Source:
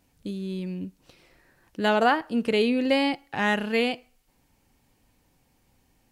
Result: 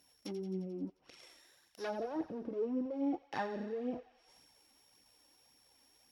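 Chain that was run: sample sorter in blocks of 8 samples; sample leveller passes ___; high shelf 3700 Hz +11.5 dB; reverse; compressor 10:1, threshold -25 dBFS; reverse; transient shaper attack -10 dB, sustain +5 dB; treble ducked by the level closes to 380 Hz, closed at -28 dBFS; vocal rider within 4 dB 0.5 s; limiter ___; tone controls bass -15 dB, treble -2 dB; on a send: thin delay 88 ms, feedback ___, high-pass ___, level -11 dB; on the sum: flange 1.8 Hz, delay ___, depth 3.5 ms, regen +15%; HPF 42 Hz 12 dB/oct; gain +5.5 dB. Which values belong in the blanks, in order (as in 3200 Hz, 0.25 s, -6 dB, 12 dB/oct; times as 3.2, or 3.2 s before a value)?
3, -27 dBFS, 69%, 1500 Hz, 0.3 ms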